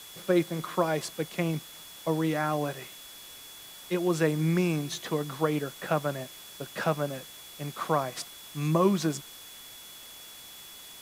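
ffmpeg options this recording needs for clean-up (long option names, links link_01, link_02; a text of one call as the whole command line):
ffmpeg -i in.wav -af "bandreject=frequency=3400:width=30,afwtdn=0.0045" out.wav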